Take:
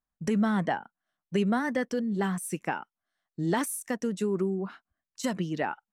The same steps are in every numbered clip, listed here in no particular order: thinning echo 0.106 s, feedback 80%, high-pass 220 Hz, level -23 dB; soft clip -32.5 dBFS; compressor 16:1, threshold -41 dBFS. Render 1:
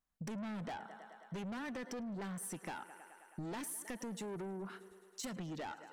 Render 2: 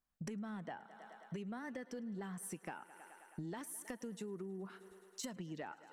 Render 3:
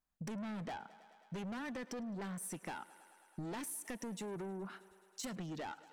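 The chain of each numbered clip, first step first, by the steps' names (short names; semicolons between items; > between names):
thinning echo > soft clip > compressor; thinning echo > compressor > soft clip; soft clip > thinning echo > compressor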